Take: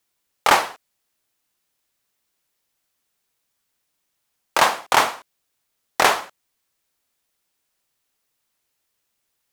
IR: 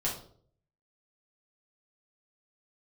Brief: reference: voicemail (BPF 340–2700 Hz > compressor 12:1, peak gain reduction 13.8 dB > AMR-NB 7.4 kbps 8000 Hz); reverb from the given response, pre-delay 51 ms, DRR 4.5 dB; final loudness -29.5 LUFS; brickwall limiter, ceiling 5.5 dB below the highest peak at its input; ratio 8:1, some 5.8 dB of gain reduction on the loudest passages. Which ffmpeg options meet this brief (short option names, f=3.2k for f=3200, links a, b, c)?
-filter_complex "[0:a]acompressor=threshold=-16dB:ratio=8,alimiter=limit=-8.5dB:level=0:latency=1,asplit=2[a][b];[1:a]atrim=start_sample=2205,adelay=51[c];[b][c]afir=irnorm=-1:irlink=0,volume=-10dB[d];[a][d]amix=inputs=2:normalize=0,highpass=340,lowpass=2.7k,acompressor=threshold=-31dB:ratio=12,volume=12dB" -ar 8000 -c:a libopencore_amrnb -b:a 7400